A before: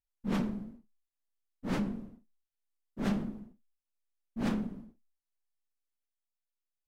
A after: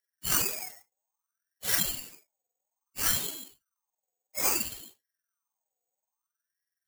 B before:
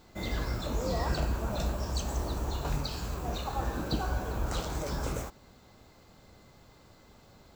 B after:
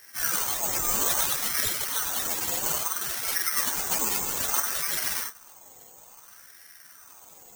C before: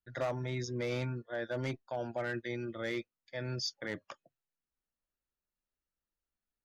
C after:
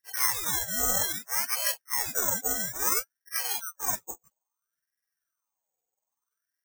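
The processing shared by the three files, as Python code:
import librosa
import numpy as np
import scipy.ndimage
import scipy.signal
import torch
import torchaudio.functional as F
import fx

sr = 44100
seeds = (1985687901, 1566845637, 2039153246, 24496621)

y = fx.octave_mirror(x, sr, pivot_hz=560.0)
y = (np.kron(y[::6], np.eye(6)[0]) * 6)[:len(y)]
y = fx.ring_lfo(y, sr, carrier_hz=1200.0, swing_pct=50, hz=0.6)
y = y * librosa.db_to_amplitude(4.0)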